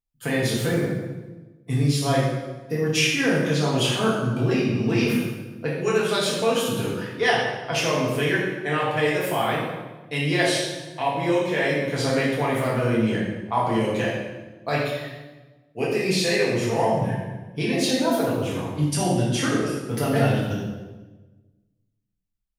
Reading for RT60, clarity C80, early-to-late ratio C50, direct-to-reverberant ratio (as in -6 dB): 1.2 s, 3.5 dB, 1.0 dB, -6.5 dB